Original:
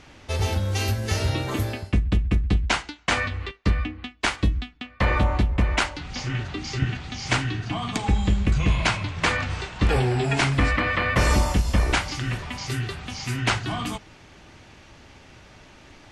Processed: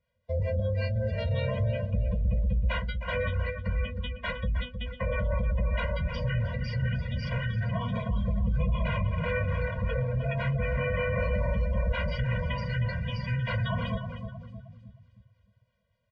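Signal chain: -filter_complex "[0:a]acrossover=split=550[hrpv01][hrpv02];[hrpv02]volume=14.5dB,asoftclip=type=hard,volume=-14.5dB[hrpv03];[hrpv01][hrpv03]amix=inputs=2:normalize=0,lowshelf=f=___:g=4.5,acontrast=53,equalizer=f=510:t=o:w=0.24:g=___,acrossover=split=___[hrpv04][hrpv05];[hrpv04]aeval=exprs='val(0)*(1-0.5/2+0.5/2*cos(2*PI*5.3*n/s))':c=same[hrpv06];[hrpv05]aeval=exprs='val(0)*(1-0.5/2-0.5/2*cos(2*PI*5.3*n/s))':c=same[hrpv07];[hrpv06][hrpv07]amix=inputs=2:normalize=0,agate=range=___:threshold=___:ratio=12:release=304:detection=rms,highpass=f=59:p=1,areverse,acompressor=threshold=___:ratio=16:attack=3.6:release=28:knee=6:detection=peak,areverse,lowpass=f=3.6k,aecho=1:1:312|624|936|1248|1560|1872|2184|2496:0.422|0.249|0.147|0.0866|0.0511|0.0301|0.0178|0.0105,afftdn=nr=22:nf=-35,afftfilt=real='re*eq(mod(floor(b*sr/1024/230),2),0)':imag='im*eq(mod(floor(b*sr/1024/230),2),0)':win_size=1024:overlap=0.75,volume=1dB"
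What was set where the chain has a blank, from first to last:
120, 9.5, 570, -12dB, -30dB, -26dB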